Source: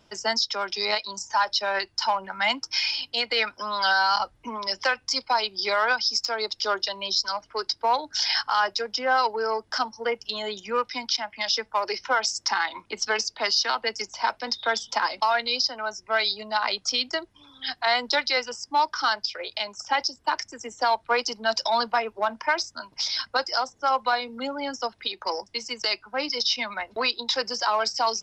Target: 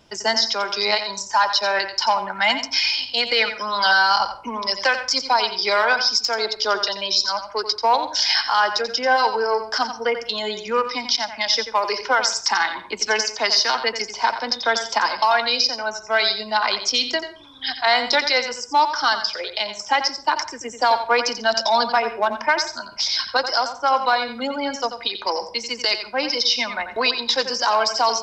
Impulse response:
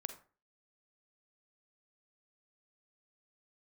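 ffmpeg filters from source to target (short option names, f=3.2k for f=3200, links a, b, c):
-filter_complex "[0:a]bandreject=f=1.3k:w=16,asplit=2[a][b];[1:a]atrim=start_sample=2205,adelay=88[c];[b][c]afir=irnorm=-1:irlink=0,volume=-7dB[d];[a][d]amix=inputs=2:normalize=0,volume=5dB"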